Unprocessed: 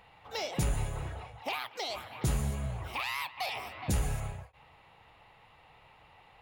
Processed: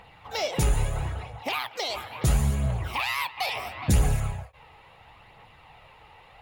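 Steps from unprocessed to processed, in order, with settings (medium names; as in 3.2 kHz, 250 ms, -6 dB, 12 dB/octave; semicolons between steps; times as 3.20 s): phaser 0.74 Hz, delay 2.5 ms, feedback 33%; trim +6 dB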